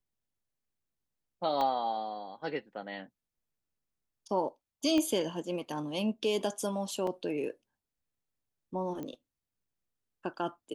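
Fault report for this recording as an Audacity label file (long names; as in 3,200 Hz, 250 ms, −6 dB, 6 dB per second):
1.610000	1.610000	drop-out 2.2 ms
4.980000	4.980000	click −19 dBFS
7.070000	7.070000	drop-out 2.7 ms
9.030000	9.030000	click −27 dBFS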